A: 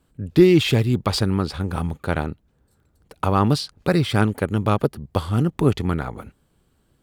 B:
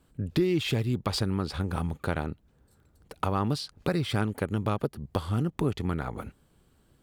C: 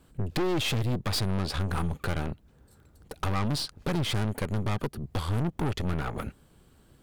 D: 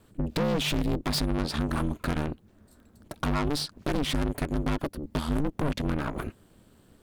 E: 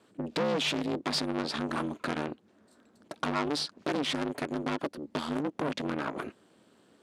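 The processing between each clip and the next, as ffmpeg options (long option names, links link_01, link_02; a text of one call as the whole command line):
ffmpeg -i in.wav -af "acompressor=threshold=-28dB:ratio=2.5" out.wav
ffmpeg -i in.wav -af "aeval=exprs='(tanh(44.7*val(0)+0.6)-tanh(0.6))/44.7':channel_layout=same,volume=8dB" out.wav
ffmpeg -i in.wav -af "aeval=exprs='val(0)*sin(2*PI*150*n/s)':channel_layout=same,volume=3.5dB" out.wav
ffmpeg -i in.wav -af "highpass=260,lowpass=7200" out.wav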